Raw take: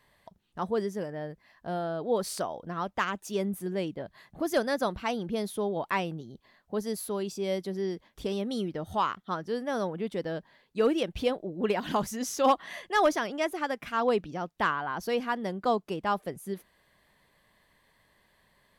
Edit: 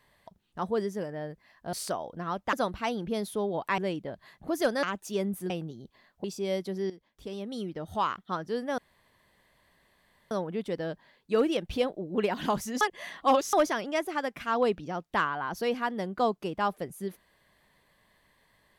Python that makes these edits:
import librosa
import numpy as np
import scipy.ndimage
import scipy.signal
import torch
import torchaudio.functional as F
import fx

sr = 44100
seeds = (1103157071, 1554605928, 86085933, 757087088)

y = fx.edit(x, sr, fx.cut(start_s=1.73, length_s=0.5),
    fx.swap(start_s=3.03, length_s=0.67, other_s=4.75, other_length_s=1.25),
    fx.cut(start_s=6.74, length_s=0.49),
    fx.fade_in_from(start_s=7.89, length_s=1.27, floor_db=-14.0),
    fx.insert_room_tone(at_s=9.77, length_s=1.53),
    fx.reverse_span(start_s=12.27, length_s=0.72), tone=tone)